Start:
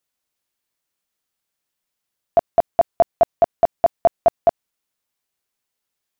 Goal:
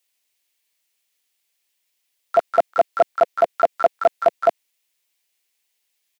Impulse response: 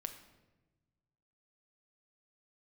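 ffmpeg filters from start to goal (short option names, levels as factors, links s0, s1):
-filter_complex "[0:a]aexciter=amount=8.7:drive=7:freq=2100,acrossover=split=240 2000:gain=0.126 1 0.141[s0][s1][s2];[s0][s1][s2]amix=inputs=3:normalize=0,asplit=3[s3][s4][s5];[s4]asetrate=33038,aresample=44100,atempo=1.33484,volume=0.158[s6];[s5]asetrate=88200,aresample=44100,atempo=0.5,volume=0.316[s7];[s3][s6][s7]amix=inputs=3:normalize=0"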